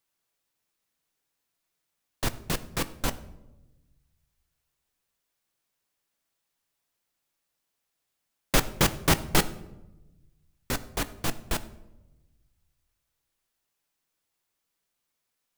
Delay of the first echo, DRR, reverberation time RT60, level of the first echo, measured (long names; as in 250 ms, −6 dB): no echo audible, 11.0 dB, 1.0 s, no echo audible